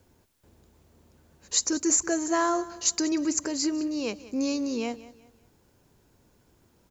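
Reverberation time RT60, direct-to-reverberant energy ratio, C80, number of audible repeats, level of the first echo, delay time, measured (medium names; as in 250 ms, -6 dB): no reverb, no reverb, no reverb, 2, -17.5 dB, 187 ms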